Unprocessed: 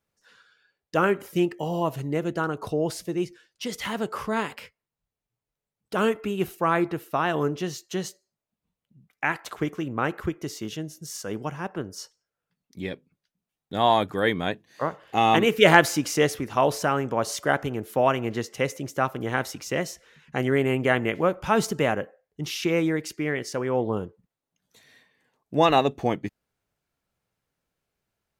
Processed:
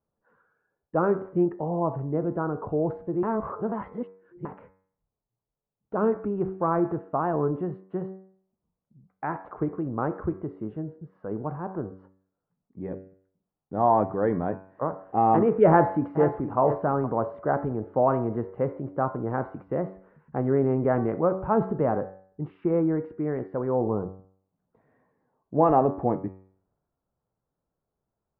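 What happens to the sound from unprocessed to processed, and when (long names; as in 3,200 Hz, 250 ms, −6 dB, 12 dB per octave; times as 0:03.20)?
0:03.23–0:04.45: reverse
0:15.68–0:16.59: delay throw 470 ms, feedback 15%, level −12 dB
whole clip: hum removal 94.83 Hz, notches 27; transient designer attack 0 dB, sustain +4 dB; inverse Chebyshev low-pass filter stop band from 6,400 Hz, stop band 80 dB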